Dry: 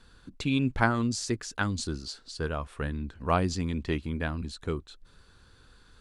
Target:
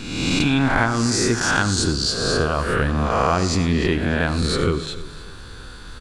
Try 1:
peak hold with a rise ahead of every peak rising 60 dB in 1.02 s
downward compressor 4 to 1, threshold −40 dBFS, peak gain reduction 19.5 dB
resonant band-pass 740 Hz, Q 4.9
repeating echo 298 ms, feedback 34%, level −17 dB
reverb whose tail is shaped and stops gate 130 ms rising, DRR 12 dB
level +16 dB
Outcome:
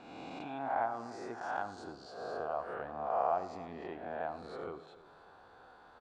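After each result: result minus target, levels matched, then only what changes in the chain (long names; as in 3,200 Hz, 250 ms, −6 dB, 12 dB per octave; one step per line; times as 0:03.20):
1,000 Hz band +7.5 dB; downward compressor: peak gain reduction +5 dB
remove: resonant band-pass 740 Hz, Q 4.9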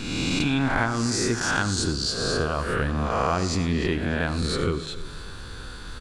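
downward compressor: peak gain reduction +5 dB
change: downward compressor 4 to 1, threshold −33.5 dBFS, peak gain reduction 14.5 dB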